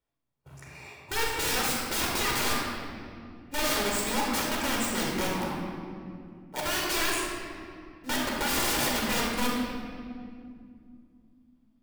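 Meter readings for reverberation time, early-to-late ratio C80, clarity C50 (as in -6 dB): 2.3 s, 1.0 dB, -1.0 dB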